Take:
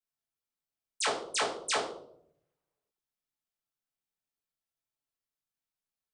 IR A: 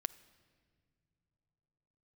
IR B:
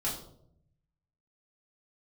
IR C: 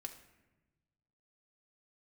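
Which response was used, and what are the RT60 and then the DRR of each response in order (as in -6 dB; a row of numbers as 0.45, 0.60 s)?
B; not exponential, 0.70 s, 1.1 s; 13.5, -7.5, 4.0 dB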